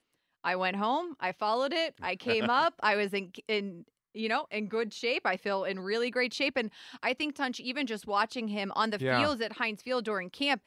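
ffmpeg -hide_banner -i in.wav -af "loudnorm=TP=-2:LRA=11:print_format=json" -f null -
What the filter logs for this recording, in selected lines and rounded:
"input_i" : "-30.9",
"input_tp" : "-11.9",
"input_lra" : "1.7",
"input_thresh" : "-41.0",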